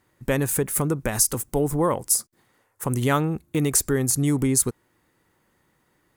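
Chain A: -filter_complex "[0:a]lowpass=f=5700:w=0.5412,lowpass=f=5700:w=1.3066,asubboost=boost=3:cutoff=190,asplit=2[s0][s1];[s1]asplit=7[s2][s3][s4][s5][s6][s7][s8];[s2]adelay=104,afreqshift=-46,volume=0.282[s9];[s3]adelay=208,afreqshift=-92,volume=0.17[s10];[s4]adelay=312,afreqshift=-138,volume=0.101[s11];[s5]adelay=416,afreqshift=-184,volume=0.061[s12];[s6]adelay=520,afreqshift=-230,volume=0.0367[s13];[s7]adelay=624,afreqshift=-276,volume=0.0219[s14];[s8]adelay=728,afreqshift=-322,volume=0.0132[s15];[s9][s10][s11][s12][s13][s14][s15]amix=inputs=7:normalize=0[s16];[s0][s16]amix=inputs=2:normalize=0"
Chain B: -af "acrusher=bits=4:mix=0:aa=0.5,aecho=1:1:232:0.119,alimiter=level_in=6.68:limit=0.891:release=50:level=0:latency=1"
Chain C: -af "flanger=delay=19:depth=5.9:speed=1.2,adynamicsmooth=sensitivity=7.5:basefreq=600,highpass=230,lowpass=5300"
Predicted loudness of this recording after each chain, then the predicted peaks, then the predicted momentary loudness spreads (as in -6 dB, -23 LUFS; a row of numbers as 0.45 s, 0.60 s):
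-23.0 LUFS, -11.0 LUFS, -30.0 LUFS; -8.5 dBFS, -1.0 dBFS, -9.0 dBFS; 12 LU, 8 LU, 10 LU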